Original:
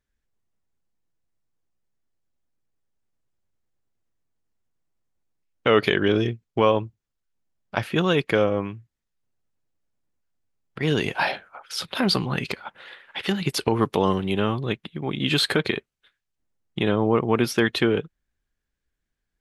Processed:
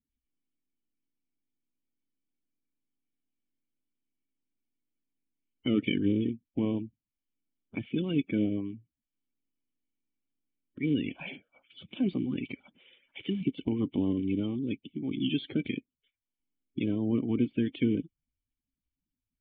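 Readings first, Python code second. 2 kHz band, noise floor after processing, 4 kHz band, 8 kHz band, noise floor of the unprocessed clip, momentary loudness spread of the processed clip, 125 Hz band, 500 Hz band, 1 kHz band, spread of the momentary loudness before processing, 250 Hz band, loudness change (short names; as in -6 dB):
-16.0 dB, under -85 dBFS, -15.0 dB, under -40 dB, -82 dBFS, 13 LU, -8.0 dB, -14.5 dB, -26.0 dB, 11 LU, -3.0 dB, -8.0 dB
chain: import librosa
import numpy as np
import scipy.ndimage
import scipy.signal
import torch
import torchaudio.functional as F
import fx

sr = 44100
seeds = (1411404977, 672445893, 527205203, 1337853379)

y = fx.spec_quant(x, sr, step_db=30)
y = fx.formant_cascade(y, sr, vowel='i')
y = F.gain(torch.from_numpy(y), 3.0).numpy()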